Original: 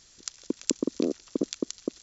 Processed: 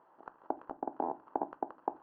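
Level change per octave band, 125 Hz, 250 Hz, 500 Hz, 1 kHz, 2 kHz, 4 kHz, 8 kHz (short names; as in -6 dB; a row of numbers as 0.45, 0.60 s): -16.0 dB, -14.0 dB, -8.0 dB, +16.5 dB, -9.0 dB, under -40 dB, n/a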